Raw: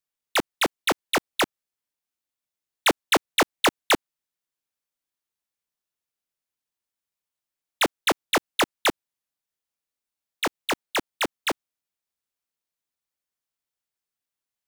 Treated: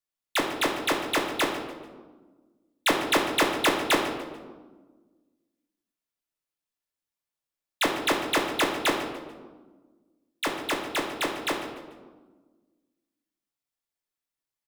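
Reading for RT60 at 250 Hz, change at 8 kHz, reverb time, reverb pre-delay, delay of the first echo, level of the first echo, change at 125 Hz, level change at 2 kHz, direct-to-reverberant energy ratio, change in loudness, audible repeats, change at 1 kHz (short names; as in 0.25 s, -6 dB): 2.0 s, -3.0 dB, 1.4 s, 3 ms, 0.146 s, -14.5 dB, -1.0 dB, -1.5 dB, 0.0 dB, -2.0 dB, 1, -1.0 dB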